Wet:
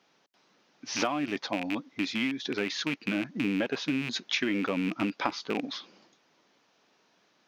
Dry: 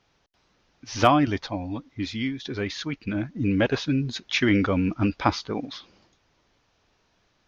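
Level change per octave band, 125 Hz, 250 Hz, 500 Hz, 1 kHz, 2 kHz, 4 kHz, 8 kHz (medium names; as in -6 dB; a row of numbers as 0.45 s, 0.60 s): -13.0 dB, -5.5 dB, -6.5 dB, -9.0 dB, -2.5 dB, -1.5 dB, no reading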